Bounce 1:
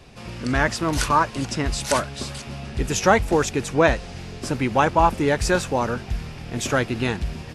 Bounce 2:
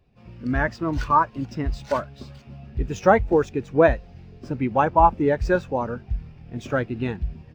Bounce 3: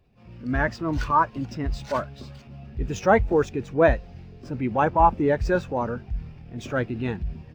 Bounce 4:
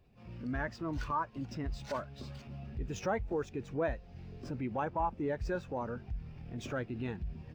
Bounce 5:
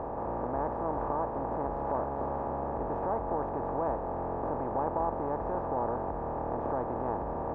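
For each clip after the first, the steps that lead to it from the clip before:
median filter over 5 samples; spectral expander 1.5:1
transient shaper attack -5 dB, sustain +2 dB
compressor 2:1, threshold -38 dBFS, peak gain reduction 14 dB; gain -2.5 dB
per-bin compression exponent 0.2; synth low-pass 830 Hz, resonance Q 1.9; gain -8 dB

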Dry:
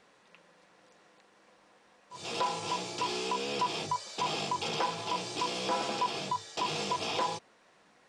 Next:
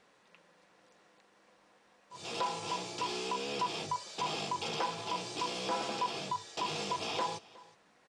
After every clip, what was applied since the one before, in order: echo 0.365 s -21.5 dB; gain -3 dB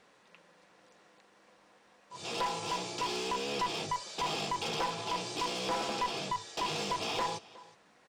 one-sided clip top -33.5 dBFS; gain +2.5 dB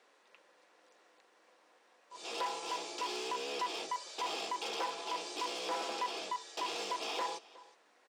HPF 300 Hz 24 dB/oct; gain -3.5 dB

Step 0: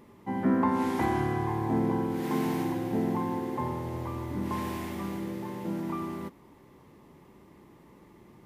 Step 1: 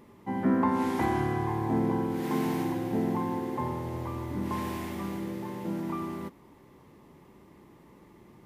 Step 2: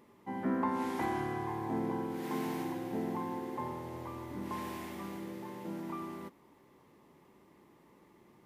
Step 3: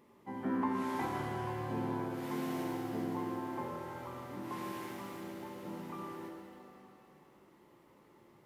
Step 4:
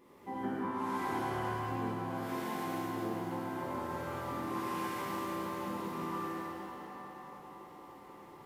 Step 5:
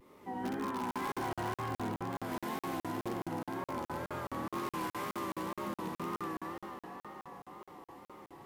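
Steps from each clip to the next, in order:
nothing audible
low shelf 150 Hz -10.5 dB; gain -5 dB
shimmer reverb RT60 2.1 s, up +7 st, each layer -8 dB, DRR 2.5 dB; gain -3 dB
compressor 2.5:1, threshold -43 dBFS, peak gain reduction 10 dB; narrowing echo 0.282 s, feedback 81%, band-pass 910 Hz, level -8 dB; non-linear reverb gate 0.26 s flat, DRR -7.5 dB
in parallel at -8.5 dB: wrapped overs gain 29 dB; on the sum: vibrato 2 Hz 84 cents; crackling interface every 0.21 s, samples 2048, zero, from 0.91; gain -2.5 dB

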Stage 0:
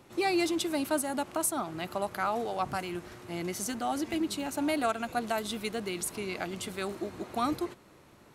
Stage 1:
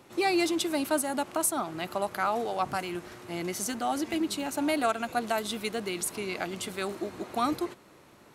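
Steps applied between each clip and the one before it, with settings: low shelf 120 Hz -8 dB; gain +2.5 dB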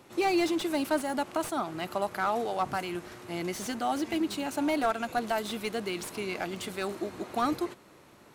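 slew limiter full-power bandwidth 91 Hz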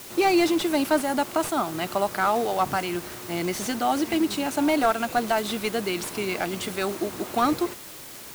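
requantised 8-bit, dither triangular; gain +6 dB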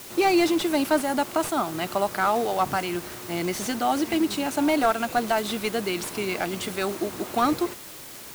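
nothing audible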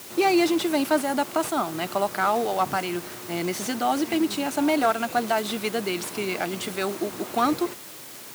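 HPF 110 Hz 12 dB/oct

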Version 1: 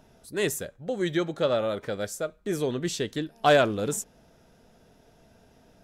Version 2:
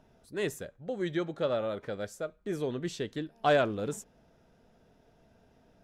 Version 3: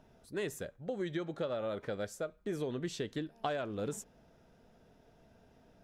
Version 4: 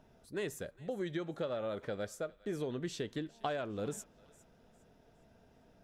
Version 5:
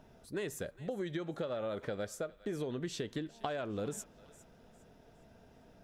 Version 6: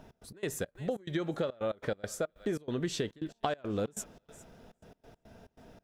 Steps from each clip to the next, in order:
high shelf 5000 Hz -10 dB; gain -5 dB
compressor 16:1, threshold -32 dBFS, peak gain reduction 13 dB
thinning echo 0.407 s, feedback 33%, high-pass 1200 Hz, level -19.5 dB; gain -1 dB
compressor 3:1, threshold -39 dBFS, peak gain reduction 6.5 dB; gain +4 dB
step gate "x.x.xx.xx.xxxx." 140 bpm -24 dB; gain +5.5 dB

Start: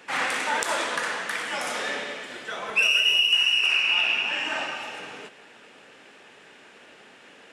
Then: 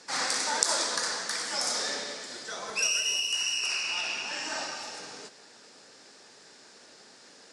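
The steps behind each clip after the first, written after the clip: LPF 9700 Hz 24 dB/oct; resonant high shelf 3700 Hz +9 dB, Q 3; gain -4.5 dB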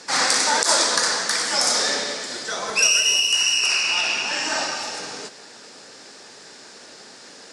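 maximiser +10 dB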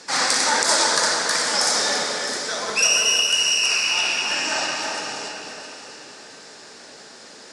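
echo with dull and thin repeats by turns 0.331 s, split 2200 Hz, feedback 53%, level -5 dB; reverb RT60 3.6 s, pre-delay 47 ms, DRR 7.5 dB; gain -1 dB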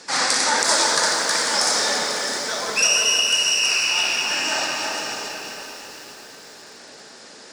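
lo-fi delay 0.494 s, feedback 55%, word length 6-bit, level -11 dB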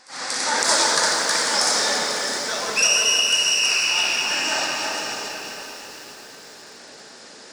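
opening faded in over 0.68 s; pre-echo 0.236 s -23 dB

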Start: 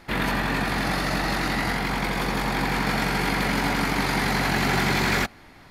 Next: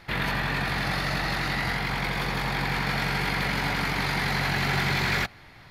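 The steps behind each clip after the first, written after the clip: graphic EQ 125/250/2000/4000/8000 Hz +7/-6/+3/+4/-4 dB; in parallel at -2.5 dB: limiter -20 dBFS, peak gain reduction 10 dB; on the sum: gain -7 dB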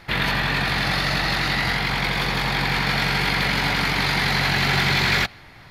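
dynamic EQ 3700 Hz, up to +5 dB, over -41 dBFS, Q 1; gain +4 dB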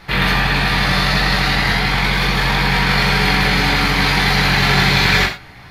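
non-linear reverb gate 0.14 s falling, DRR -1.5 dB; gain +2 dB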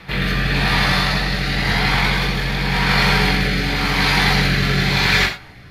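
pre-echo 0.145 s -23 dB; rotary speaker horn 0.9 Hz

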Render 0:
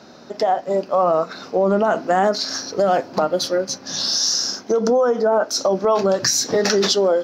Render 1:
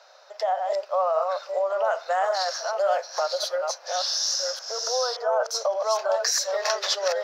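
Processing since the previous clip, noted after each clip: reverse delay 0.574 s, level -4 dB; elliptic high-pass 550 Hz, stop band 50 dB; gain -5.5 dB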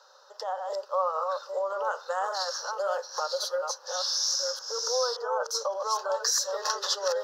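fixed phaser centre 450 Hz, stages 8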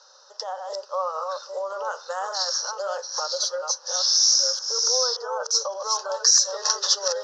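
synth low-pass 5900 Hz, resonance Q 3.4

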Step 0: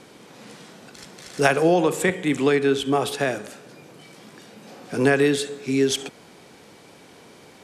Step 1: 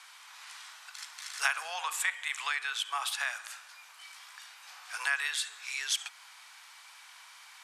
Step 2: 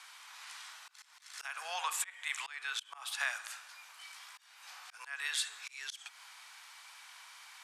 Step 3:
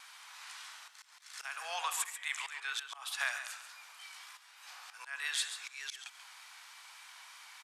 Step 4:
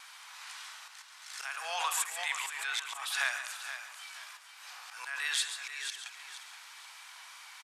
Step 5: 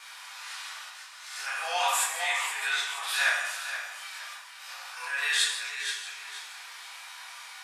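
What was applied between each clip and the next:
steep high-pass 970 Hz 36 dB/oct; compressor 1.5:1, threshold -35 dBFS, peak gain reduction 7 dB
auto swell 0.3 s; gain -1 dB
echo 0.138 s -10 dB; vibrato 3.3 Hz 30 cents
on a send: feedback echo 0.475 s, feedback 33%, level -10.5 dB; on the sum: backwards sustainer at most 56 dB/s; gain +2.5 dB
stepped spectrum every 50 ms; shoebox room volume 76 m³, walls mixed, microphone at 1.8 m

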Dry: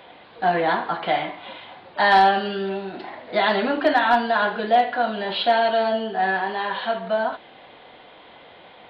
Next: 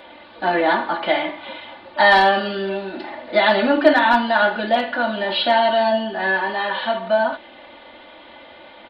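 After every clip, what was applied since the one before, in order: comb 3.4 ms, depth 77%; gain +2 dB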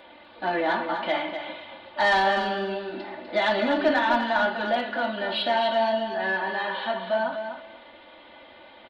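soft clip -6.5 dBFS, distortion -20 dB; on a send: feedback echo 0.249 s, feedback 17%, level -8 dB; on the sum: gain -6.5 dB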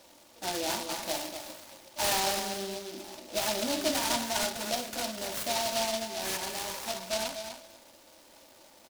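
noise-modulated delay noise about 4000 Hz, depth 0.16 ms; gain -7.5 dB

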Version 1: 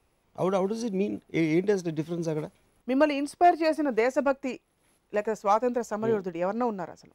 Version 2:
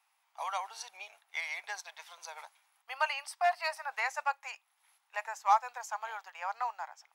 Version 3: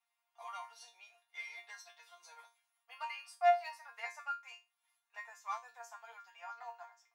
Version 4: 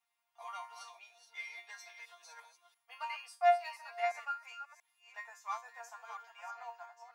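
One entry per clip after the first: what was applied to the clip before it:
elliptic high-pass 810 Hz, stop band 60 dB
resonator bank A#3 fifth, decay 0.25 s; gain +4 dB
reverse delay 0.343 s, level -8.5 dB; gain +1 dB

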